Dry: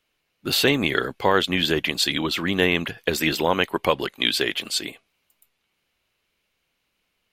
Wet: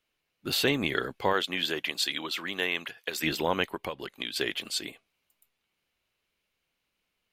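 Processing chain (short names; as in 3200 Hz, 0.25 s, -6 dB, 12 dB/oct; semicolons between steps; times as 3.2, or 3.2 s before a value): 1.32–3.22 HPF 400 Hz -> 1100 Hz 6 dB/oct; 3.73–4.36 compressor 6:1, threshold -25 dBFS, peak gain reduction 11 dB; gain -6.5 dB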